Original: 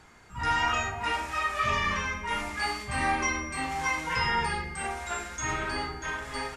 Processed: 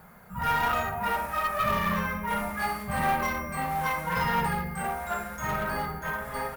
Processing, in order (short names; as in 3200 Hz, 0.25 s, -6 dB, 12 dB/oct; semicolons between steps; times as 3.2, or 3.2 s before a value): companded quantiser 6-bit; EQ curve 120 Hz 0 dB, 190 Hz +15 dB, 300 Hz -9 dB, 540 Hz +8 dB, 860 Hz +3 dB, 1400 Hz +3 dB, 2700 Hz -7 dB, 7100 Hz -10 dB, 12000 Hz +12 dB; one-sided clip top -25 dBFS